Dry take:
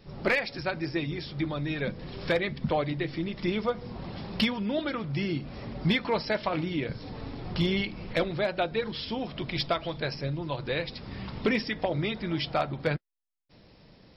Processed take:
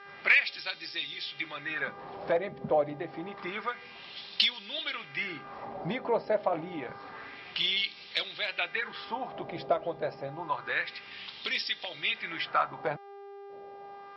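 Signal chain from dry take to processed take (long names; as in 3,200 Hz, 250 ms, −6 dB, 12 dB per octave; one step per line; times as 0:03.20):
hum with harmonics 400 Hz, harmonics 14, −48 dBFS −6 dB per octave
auto-filter band-pass sine 0.28 Hz 550–3,800 Hz
dynamic equaliser 460 Hz, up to −6 dB, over −46 dBFS, Q 1.1
level +8.5 dB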